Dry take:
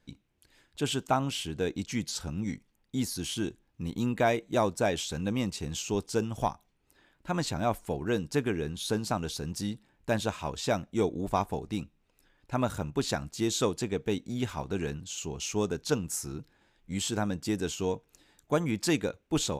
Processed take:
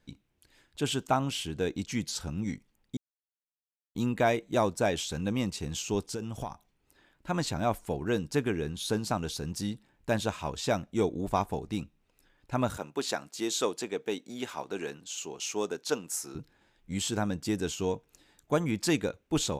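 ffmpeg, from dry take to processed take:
-filter_complex "[0:a]asettb=1/sr,asplit=3[s0][s1][s2];[s0]atrim=end=6.114[s3];[s1]atrim=start=6.11:end=6.51,asetpts=PTS-STARTPTS,afade=t=in:d=0.004:c=qsin,afade=t=out:st=0.396:d=0.004:c=qsin,acompressor=threshold=0.0282:ratio=6:attack=3.2:release=140:knee=1:detection=peak[s4];[s2]atrim=start=6.506[s5];[s3][s4]acrossfade=d=0.004:c1=hsin:c2=qsin[s6];[s6][s5]acrossfade=d=0.004:c1=qsin:c2=hsin,asettb=1/sr,asplit=3[s7][s8][s9];[s7]atrim=end=12.774[s10];[s8]atrim=start=12.77:end=16.35,asetpts=PTS-STARTPTS,afade=t=in:d=0.004:c=qsin,afade=t=out:st=3.576:d=0.004:c=qsin,highpass=330[s11];[s9]atrim=start=16.346[s12];[s10][s11]acrossfade=d=0.004:c1=hsin:c2=qsin[s13];[s13][s12]acrossfade=d=0.004:c1=qsin:c2=hsin,asplit=3[s14][s15][s16];[s14]atrim=end=2.97,asetpts=PTS-STARTPTS,afade=t=out:st=2.966:d=0.004:c=hsin[s17];[s15]atrim=start=2.97:end=3.95,asetpts=PTS-STARTPTS,volume=0[s18];[s16]atrim=start=3.95,asetpts=PTS-STARTPTS,afade=t=in:d=0.004:c=hsin[s19];[s17][s18][s19]concat=n=3:v=0:a=1"

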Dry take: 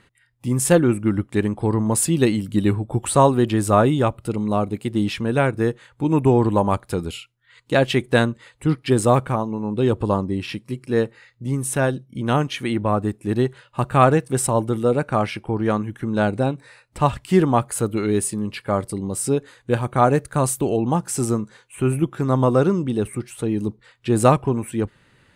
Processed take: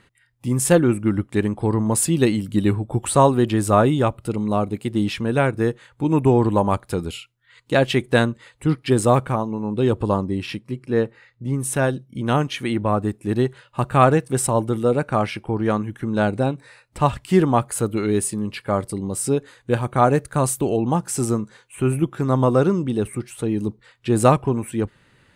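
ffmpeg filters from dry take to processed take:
-filter_complex "[0:a]asettb=1/sr,asplit=3[s0][s1][s2];[s0]atrim=end=10.574[s3];[s1]atrim=start=10.57:end=11.6,asetpts=PTS-STARTPTS,afade=t=in:d=0.004:c=qsin,afade=t=out:st=1.026:d=0.004:c=qsin,highshelf=f=4400:g=-10[s4];[s2]atrim=start=11.596[s5];[s3][s4]acrossfade=d=0.004:c1=hsin:c2=qsin[s6];[s6][s5]acrossfade=d=0.004:c1=qsin:c2=hsin"

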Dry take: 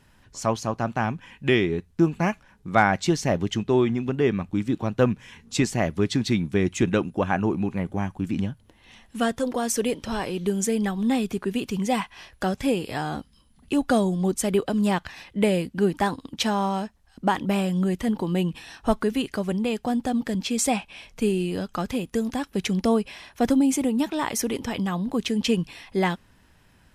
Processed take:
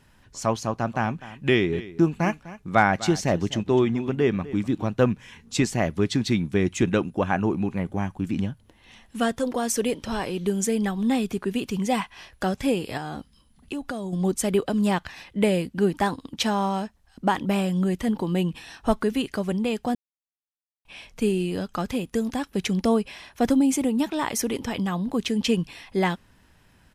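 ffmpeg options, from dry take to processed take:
-filter_complex "[0:a]asplit=3[s0][s1][s2];[s0]afade=t=out:st=0.93:d=0.02[s3];[s1]aecho=1:1:251:0.141,afade=t=in:st=0.93:d=0.02,afade=t=out:st=4.9:d=0.02[s4];[s2]afade=t=in:st=4.9:d=0.02[s5];[s3][s4][s5]amix=inputs=3:normalize=0,asettb=1/sr,asplit=3[s6][s7][s8];[s6]atrim=end=12.974[s9];[s7]atrim=start=12.97:end=14.13,asetpts=PTS-STARTPTS,afade=t=in:d=0.004:c=qsin,afade=t=out:st=1.156:d=0.004:c=qsin,acompressor=threshold=0.0398:ratio=5:attack=3.2:release=140:knee=1:detection=peak[s10];[s8]atrim=start=14.126[s11];[s9][s10]acrossfade=d=0.004:c1=hsin:c2=qsin[s12];[s12][s11]acrossfade=d=0.004:c1=qsin:c2=hsin,asplit=3[s13][s14][s15];[s13]atrim=end=19.95,asetpts=PTS-STARTPTS,afade=t=out:st=19.946:d=0.004:c=hsin[s16];[s14]atrim=start=19.95:end=20.85,asetpts=PTS-STARTPTS,volume=0[s17];[s15]atrim=start=20.85,asetpts=PTS-STARTPTS,afade=t=in:d=0.004:c=hsin[s18];[s16][s17][s18]concat=n=3:v=0:a=1"

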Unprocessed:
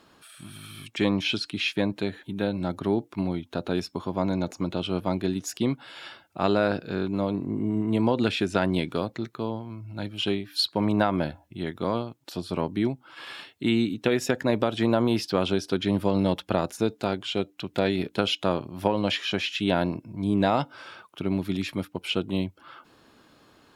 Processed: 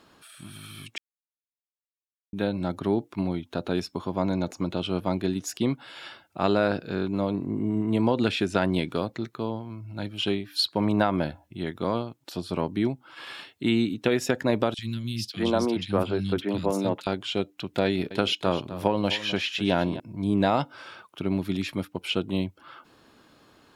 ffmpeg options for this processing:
-filter_complex "[0:a]asettb=1/sr,asplit=3[s0][s1][s2];[s0]atrim=end=14.744[s3];[s1]atrim=start=14.74:end=17.07,asetpts=PTS-STARTPTS,afade=t=in:d=0.004:c=qsin,afade=t=out:st=2.326:d=0.004:c=qsin,acrossover=split=200|2400[s4][s5][s6];[s4]adelay=40[s7];[s5]adelay=600[s8];[s7][s8][s6]amix=inputs=3:normalize=0,atrim=end_sample=102753[s9];[s2]atrim=start=17.066[s10];[s3][s9]acrossfade=d=0.004:c1=hsin:c2=qsin[s11];[s11][s10]acrossfade=d=0.004:c1=qsin:c2=hsin,asettb=1/sr,asplit=3[s12][s13][s14];[s12]atrim=end=17.854[s15];[s13]atrim=start=17.85:end=20,asetpts=PTS-STARTPTS,afade=t=in:d=0.004:c=qsin,afade=t=out:st=2.146:d=0.004:c=qsin,aecho=1:1:255:0.2,atrim=end_sample=94815[s16];[s14]atrim=start=19.996[s17];[s15][s16]acrossfade=d=0.004:c1=hsin:c2=qsin[s18];[s18][s17]acrossfade=d=0.004:c1=qsin:c2=hsin,asplit=3[s19][s20][s21];[s19]atrim=end=0.98,asetpts=PTS-STARTPTS,afade=t=out:st=0.976:d=0.004:c=hsin[s22];[s20]atrim=start=0.98:end=2.33,asetpts=PTS-STARTPTS,volume=0[s23];[s21]atrim=start=2.33,asetpts=PTS-STARTPTS,afade=t=in:d=0.004:c=hsin[s24];[s22][s23][s24]concat=n=3:v=0:a=1"

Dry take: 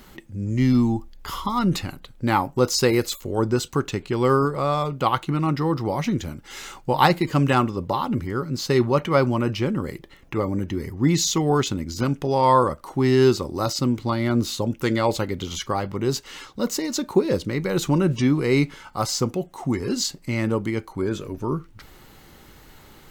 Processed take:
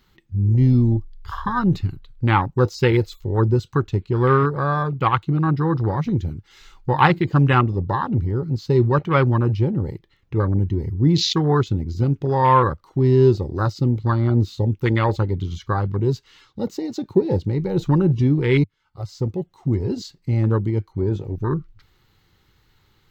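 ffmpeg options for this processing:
-filter_complex "[0:a]asplit=2[s0][s1];[s0]atrim=end=18.64,asetpts=PTS-STARTPTS,afade=t=out:st=18.636:d=0.004:c=hsin[s2];[s1]atrim=start=18.64,asetpts=PTS-STARTPTS,afade=t=in:d=0.89[s3];[s2][s3]concat=n=2:v=0:a=1,highshelf=f=5600:g=-2.5,afwtdn=0.0501,equalizer=f=100:t=o:w=0.67:g=7,equalizer=f=250:t=o:w=0.67:g=-6,equalizer=f=630:t=o:w=0.67:g=-9,equalizer=f=4000:t=o:w=0.67:g=5,equalizer=f=10000:t=o:w=0.67:g=-11,volume=1.68"

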